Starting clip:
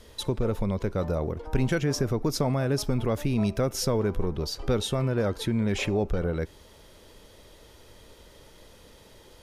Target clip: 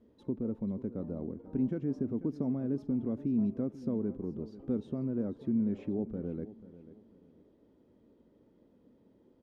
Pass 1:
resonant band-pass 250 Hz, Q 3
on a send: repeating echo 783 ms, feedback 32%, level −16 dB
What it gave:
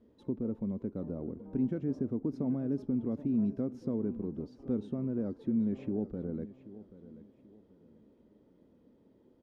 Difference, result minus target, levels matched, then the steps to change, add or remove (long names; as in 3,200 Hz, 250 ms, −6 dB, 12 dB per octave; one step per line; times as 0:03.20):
echo 293 ms late
change: repeating echo 490 ms, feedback 32%, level −16 dB